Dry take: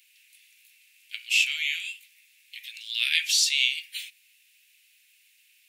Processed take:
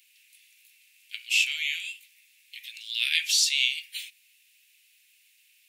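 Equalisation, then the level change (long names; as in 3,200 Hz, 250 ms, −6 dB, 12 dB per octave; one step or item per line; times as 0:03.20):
high-pass filter 1,500 Hz 6 dB per octave
0.0 dB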